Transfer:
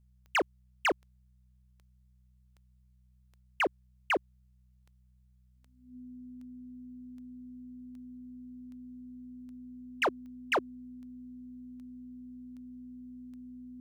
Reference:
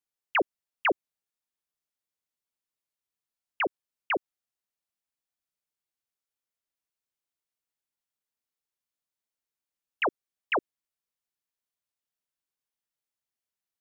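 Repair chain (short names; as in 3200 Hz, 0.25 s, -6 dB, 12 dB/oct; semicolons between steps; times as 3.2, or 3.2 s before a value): clip repair -24 dBFS; de-click; de-hum 62.5 Hz, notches 3; notch 250 Hz, Q 30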